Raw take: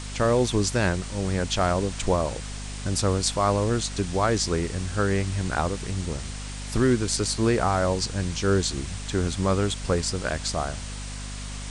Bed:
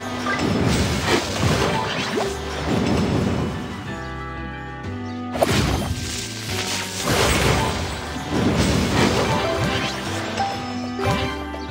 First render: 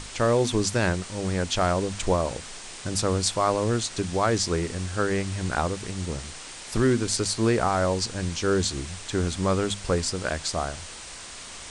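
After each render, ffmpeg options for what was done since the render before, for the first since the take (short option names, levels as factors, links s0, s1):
-af "bandreject=f=50:t=h:w=6,bandreject=f=100:t=h:w=6,bandreject=f=150:t=h:w=6,bandreject=f=200:t=h:w=6,bandreject=f=250:t=h:w=6"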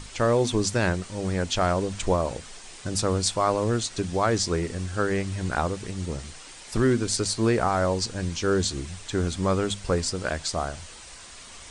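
-af "afftdn=nr=6:nf=-41"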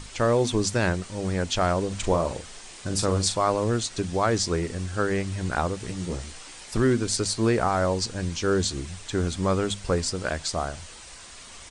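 -filter_complex "[0:a]asplit=3[s0][s1][s2];[s0]afade=t=out:st=1.9:d=0.02[s3];[s1]asplit=2[s4][s5];[s5]adelay=41,volume=0.376[s6];[s4][s6]amix=inputs=2:normalize=0,afade=t=in:st=1.9:d=0.02,afade=t=out:st=3.37:d=0.02[s7];[s2]afade=t=in:st=3.37:d=0.02[s8];[s3][s7][s8]amix=inputs=3:normalize=0,asettb=1/sr,asplit=3[s9][s10][s11];[s9]atrim=end=5.784[s12];[s10]atrim=start=5.78:end=6.66,asetpts=PTS-STARTPTS,afade=t=in:d=0.004:c=qsin,afade=t=out:st=0.876:d=0.004:c=qsin,asplit=2[s13][s14];[s14]adelay=17,volume=0.562[s15];[s13][s15]amix=inputs=2:normalize=0,atrim=end_sample=38808[s16];[s11]atrim=start=6.656[s17];[s12][s16]acrossfade=d=0.004:c1=hsin:c2=qsin[s18];[s18][s17]acrossfade=d=0.004:c1=qsin:c2=hsin"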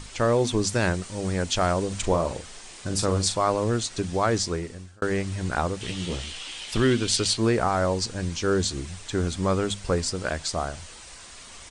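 -filter_complex "[0:a]asettb=1/sr,asplit=3[s0][s1][s2];[s0]atrim=end=0.694[s3];[s1]atrim=start=0.69:end=2.02,asetpts=PTS-STARTPTS,afade=t=in:d=0.004:c=qsin,afade=t=out:st=1.326:d=0.004:c=qsin,highshelf=f=7300:g=6[s4];[s2]atrim=start=2.016[s5];[s3][s4]acrossfade=d=0.004:c1=hsin:c2=qsin[s6];[s6][s5]acrossfade=d=0.004:c1=qsin:c2=hsin,asettb=1/sr,asplit=3[s7][s8][s9];[s7]atrim=end=5.814[s10];[s8]atrim=start=5.81:end=7.37,asetpts=PTS-STARTPTS,afade=t=in:d=0.004:c=qsin,afade=t=out:st=1.556:d=0.004:c=qsin,equalizer=f=3100:w=1.7:g=14[s11];[s9]atrim=start=7.366[s12];[s10][s11]acrossfade=d=0.004:c1=hsin:c2=qsin[s13];[s13][s12]acrossfade=d=0.004:c1=qsin:c2=hsin,asplit=2[s14][s15];[s14]atrim=end=5.02,asetpts=PTS-STARTPTS,afade=t=out:st=4.36:d=0.66[s16];[s15]atrim=start=5.02,asetpts=PTS-STARTPTS,afade=t=in:d=0.004:c=hsin[s17];[s16][s17]concat=n=2:v=0:a=1"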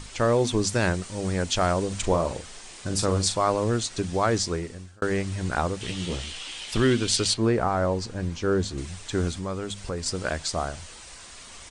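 -filter_complex "[0:a]asettb=1/sr,asplit=3[s0][s1][s2];[s0]atrim=end=7.344[s3];[s1]atrim=start=7.34:end=8.78,asetpts=PTS-STARTPTS,afade=t=in:d=0.004:c=qsin,afade=t=out:st=1.436:d=0.004:c=qsin,highshelf=f=2600:g=-10[s4];[s2]atrim=start=8.776[s5];[s3][s4]acrossfade=d=0.004:c1=hsin:c2=qsin[s6];[s6][s5]acrossfade=d=0.004:c1=qsin:c2=hsin,asettb=1/sr,asplit=3[s7][s8][s9];[s7]atrim=end=9.314[s10];[s8]atrim=start=9.31:end=10.06,asetpts=PTS-STARTPTS,afade=t=in:d=0.004:c=qsin,afade=t=out:st=0.746:d=0.004:c=qsin,acompressor=threshold=0.0251:ratio=2:attack=3.2:release=140:knee=1:detection=peak[s11];[s9]atrim=start=10.056[s12];[s10][s11]acrossfade=d=0.004:c1=hsin:c2=qsin[s13];[s13][s12]acrossfade=d=0.004:c1=qsin:c2=hsin"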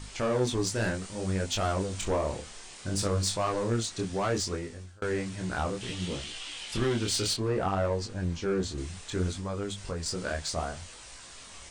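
-af "asoftclip=type=tanh:threshold=0.119,flanger=delay=19.5:depth=7.7:speed=0.63"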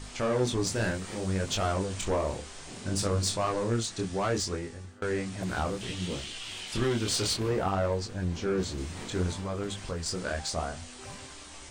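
-filter_complex "[1:a]volume=0.0562[s0];[0:a][s0]amix=inputs=2:normalize=0"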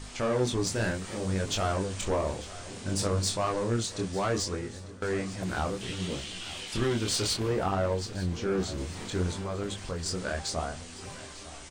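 -af "aecho=1:1:897|1794|2691|3588:0.141|0.0622|0.0273|0.012"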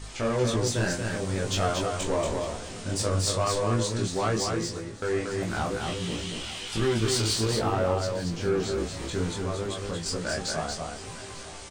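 -filter_complex "[0:a]asplit=2[s0][s1];[s1]adelay=18,volume=0.631[s2];[s0][s2]amix=inputs=2:normalize=0,asplit=2[s3][s4];[s4]aecho=0:1:233:0.596[s5];[s3][s5]amix=inputs=2:normalize=0"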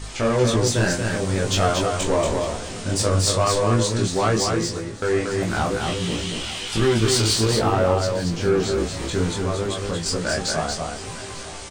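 -af "volume=2.11"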